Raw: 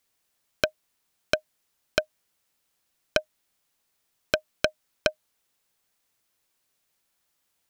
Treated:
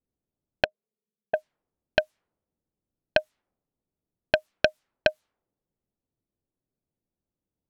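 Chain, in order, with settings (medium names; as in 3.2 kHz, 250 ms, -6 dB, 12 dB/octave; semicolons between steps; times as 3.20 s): 0.64–1.34 s: two resonant band-passes 300 Hz, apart 1 oct; level-controlled noise filter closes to 310 Hz, open at -27.5 dBFS; trim +3.5 dB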